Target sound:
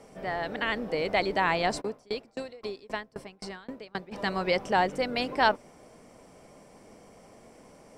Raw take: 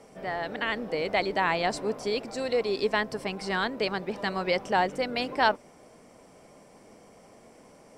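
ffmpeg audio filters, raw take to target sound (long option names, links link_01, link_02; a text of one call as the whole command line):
ffmpeg -i in.wav -filter_complex "[0:a]lowshelf=frequency=91:gain=5.5,asplit=3[link_01][link_02][link_03];[link_01]afade=type=out:start_time=1.8:duration=0.02[link_04];[link_02]aeval=exprs='val(0)*pow(10,-31*if(lt(mod(3.8*n/s,1),2*abs(3.8)/1000),1-mod(3.8*n/s,1)/(2*abs(3.8)/1000),(mod(3.8*n/s,1)-2*abs(3.8)/1000)/(1-2*abs(3.8)/1000))/20)':channel_layout=same,afade=type=in:start_time=1.8:duration=0.02,afade=type=out:start_time=4.11:duration=0.02[link_05];[link_03]afade=type=in:start_time=4.11:duration=0.02[link_06];[link_04][link_05][link_06]amix=inputs=3:normalize=0" out.wav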